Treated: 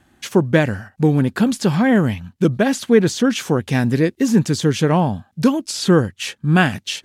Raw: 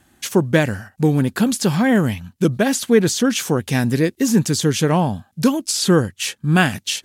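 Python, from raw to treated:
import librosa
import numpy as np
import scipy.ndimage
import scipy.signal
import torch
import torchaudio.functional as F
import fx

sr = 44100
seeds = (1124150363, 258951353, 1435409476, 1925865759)

y = fx.high_shelf(x, sr, hz=5900.0, db=-11.5)
y = y * librosa.db_to_amplitude(1.0)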